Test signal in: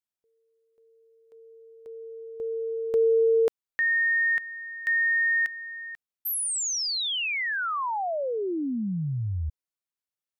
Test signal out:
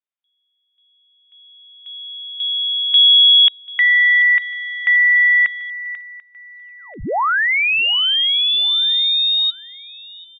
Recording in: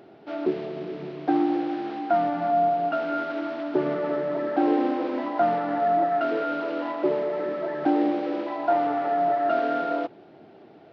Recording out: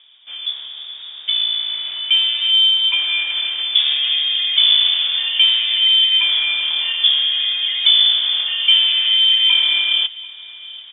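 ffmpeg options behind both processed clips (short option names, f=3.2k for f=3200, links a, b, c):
-af "aecho=1:1:739|1478|2217:0.0794|0.0373|0.0175,lowpass=f=3.2k:t=q:w=0.5098,lowpass=f=3.2k:t=q:w=0.6013,lowpass=f=3.2k:t=q:w=0.9,lowpass=f=3.2k:t=q:w=2.563,afreqshift=-3800,dynaudnorm=f=540:g=7:m=12dB"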